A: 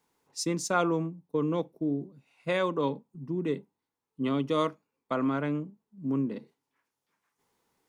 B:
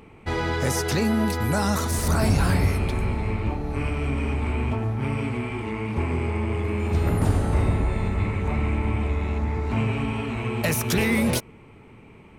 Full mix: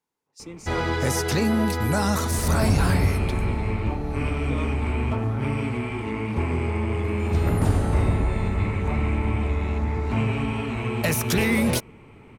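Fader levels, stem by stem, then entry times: −10.0, +0.5 decibels; 0.00, 0.40 seconds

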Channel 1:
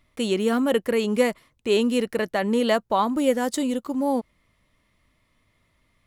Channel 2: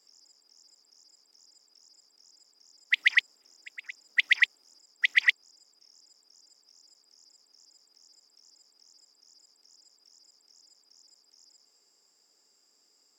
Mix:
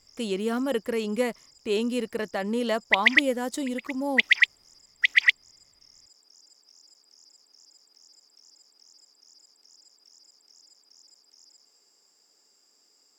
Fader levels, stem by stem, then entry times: −5.5, +3.0 decibels; 0.00, 0.00 seconds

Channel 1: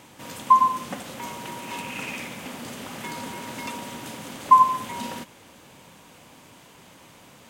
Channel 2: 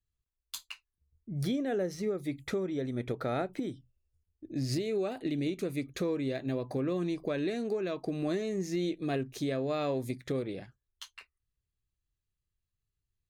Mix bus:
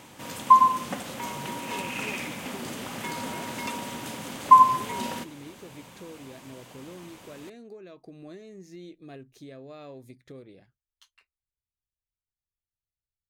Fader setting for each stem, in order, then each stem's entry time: +0.5, −12.5 decibels; 0.00, 0.00 seconds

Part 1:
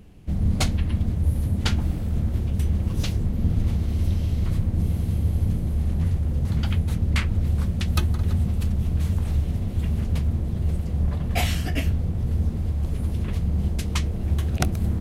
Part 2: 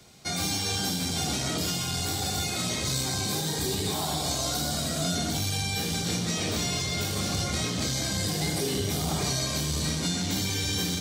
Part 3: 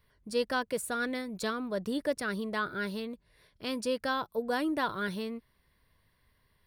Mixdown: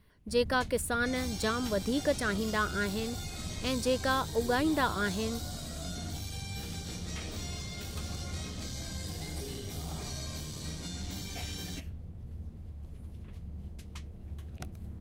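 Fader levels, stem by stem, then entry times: −19.5, −13.0, +2.0 decibels; 0.00, 0.80, 0.00 seconds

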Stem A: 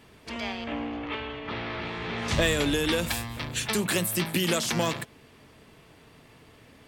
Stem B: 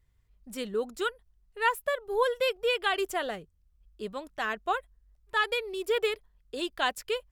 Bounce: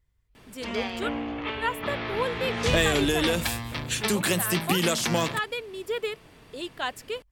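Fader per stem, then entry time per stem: +1.5, −2.5 decibels; 0.35, 0.00 seconds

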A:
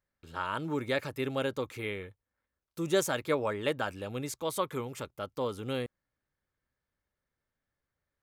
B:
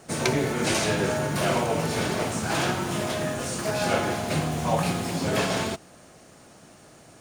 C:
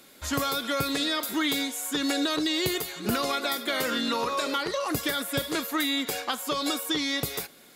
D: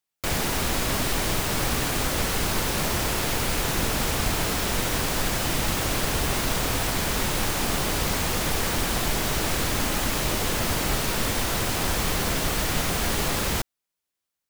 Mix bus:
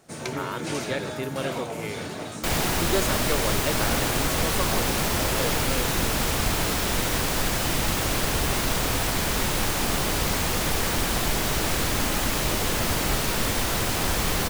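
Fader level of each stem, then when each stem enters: +0.5, −8.0, −16.5, +0.5 decibels; 0.00, 0.00, 0.00, 2.20 seconds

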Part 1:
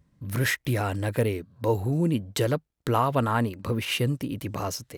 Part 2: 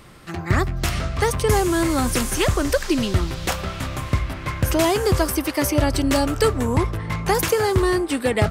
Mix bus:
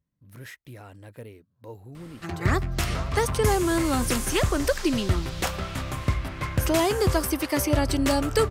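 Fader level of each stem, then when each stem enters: −17.5, −3.5 decibels; 0.00, 1.95 seconds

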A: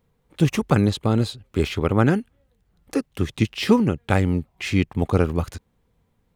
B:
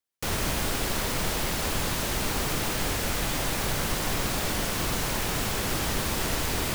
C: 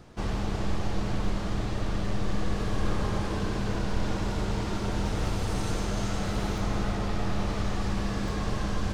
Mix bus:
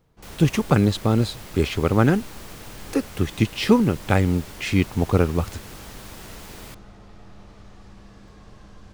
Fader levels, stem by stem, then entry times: +0.5, −13.0, −17.0 decibels; 0.00, 0.00, 0.00 seconds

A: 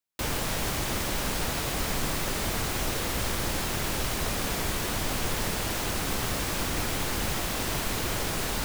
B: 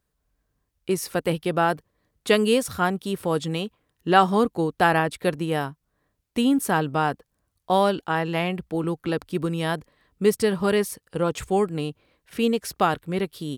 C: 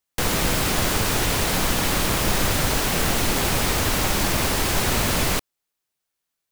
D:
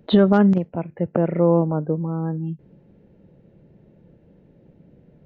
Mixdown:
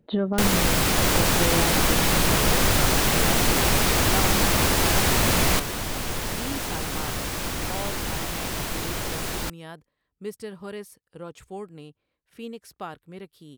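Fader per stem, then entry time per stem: 0.0, −15.0, +0.5, −10.0 decibels; 0.85, 0.00, 0.20, 0.00 seconds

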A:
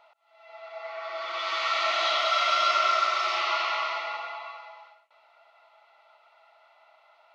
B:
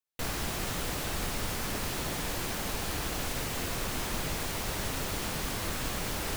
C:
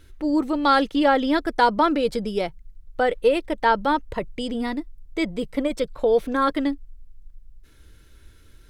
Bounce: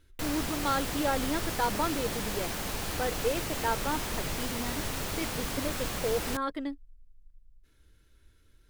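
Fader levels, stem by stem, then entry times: muted, −0.5 dB, −11.5 dB; muted, 0.00 s, 0.00 s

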